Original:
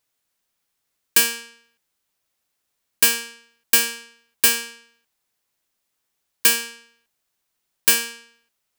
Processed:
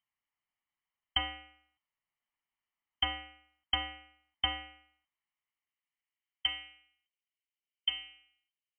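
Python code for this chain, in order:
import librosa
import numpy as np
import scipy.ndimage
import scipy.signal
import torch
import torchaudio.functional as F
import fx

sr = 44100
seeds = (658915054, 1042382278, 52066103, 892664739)

y = fx.lower_of_two(x, sr, delay_ms=0.96)
y = fx.filter_sweep_lowpass(y, sr, from_hz=2100.0, to_hz=710.0, start_s=4.77, end_s=7.45, q=0.85)
y = fx.freq_invert(y, sr, carrier_hz=3100)
y = y * librosa.db_to_amplitude(-8.0)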